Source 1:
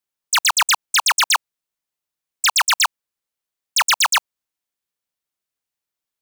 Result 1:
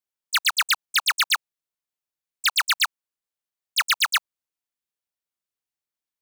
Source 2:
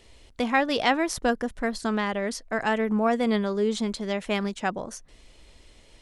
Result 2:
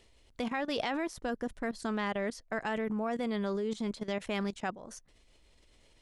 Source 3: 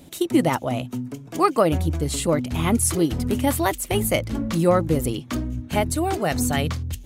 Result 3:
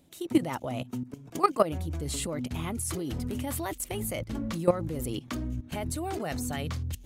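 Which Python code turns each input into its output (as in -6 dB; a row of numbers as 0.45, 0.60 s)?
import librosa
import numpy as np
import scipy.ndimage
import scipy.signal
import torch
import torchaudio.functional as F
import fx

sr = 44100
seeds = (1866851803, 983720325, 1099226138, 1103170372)

y = fx.level_steps(x, sr, step_db=15)
y = F.gain(torch.from_numpy(y), -2.5).numpy()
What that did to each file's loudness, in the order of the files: -5.0, -8.5, -9.0 LU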